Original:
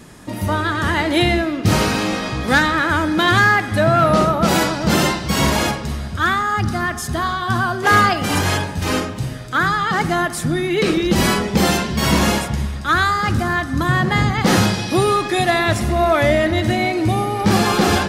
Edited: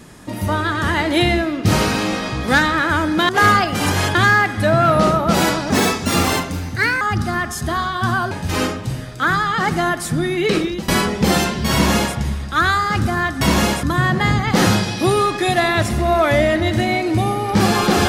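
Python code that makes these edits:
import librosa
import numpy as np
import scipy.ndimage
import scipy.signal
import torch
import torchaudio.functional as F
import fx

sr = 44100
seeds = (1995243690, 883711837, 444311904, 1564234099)

y = fx.edit(x, sr, fx.speed_span(start_s=4.84, length_s=1.64, speed=1.25),
    fx.move(start_s=7.78, length_s=0.86, to_s=3.29),
    fx.fade_out_to(start_s=10.88, length_s=0.33, floor_db=-21.0),
    fx.duplicate(start_s=12.06, length_s=0.42, to_s=13.74), tone=tone)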